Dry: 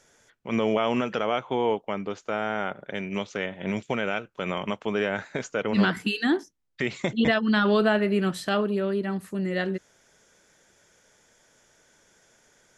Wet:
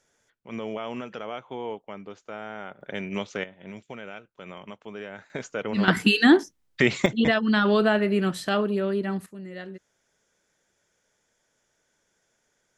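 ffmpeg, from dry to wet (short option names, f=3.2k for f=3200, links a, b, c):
-af "asetnsamples=n=441:p=0,asendcmd='2.81 volume volume -0.5dB;3.44 volume volume -12dB;5.3 volume volume -3dB;5.88 volume volume 7.5dB;7.06 volume volume 0.5dB;9.26 volume volume -11dB',volume=-9dB"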